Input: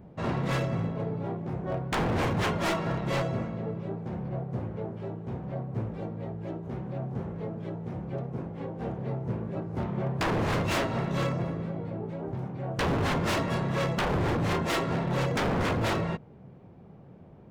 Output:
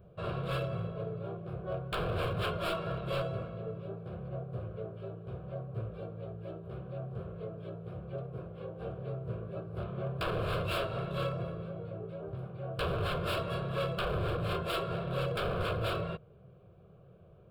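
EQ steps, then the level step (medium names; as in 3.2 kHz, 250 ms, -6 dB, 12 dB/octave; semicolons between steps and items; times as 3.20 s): static phaser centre 1.3 kHz, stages 8; -2.5 dB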